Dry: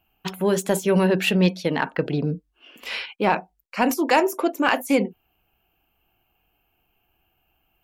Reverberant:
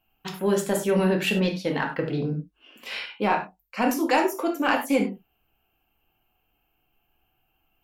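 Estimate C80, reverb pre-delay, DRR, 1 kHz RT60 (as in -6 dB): 14.5 dB, 4 ms, 1.5 dB, n/a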